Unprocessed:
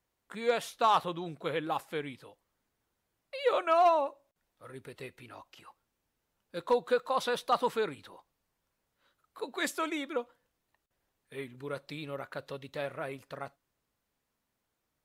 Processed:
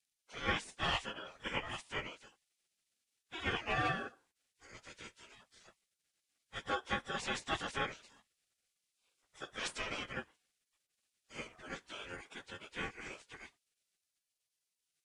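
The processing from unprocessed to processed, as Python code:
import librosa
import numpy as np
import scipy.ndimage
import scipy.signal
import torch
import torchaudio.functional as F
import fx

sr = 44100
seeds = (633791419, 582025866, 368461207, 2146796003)

y = fx.pitch_bins(x, sr, semitones=-8.5)
y = y * np.sin(2.0 * np.pi * 960.0 * np.arange(len(y)) / sr)
y = fx.spec_gate(y, sr, threshold_db=-15, keep='weak')
y = y * 10.0 ** (9.5 / 20.0)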